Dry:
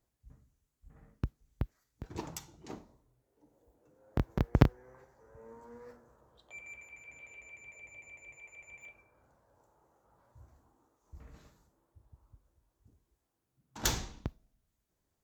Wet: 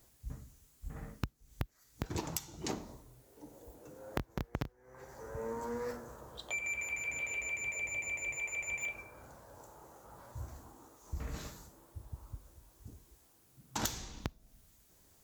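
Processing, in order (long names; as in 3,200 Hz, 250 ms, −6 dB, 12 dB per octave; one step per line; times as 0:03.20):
high-shelf EQ 3,900 Hz +8.5 dB
downward compressor 20 to 1, threshold −47 dBFS, peak gain reduction 32.5 dB
level +13.5 dB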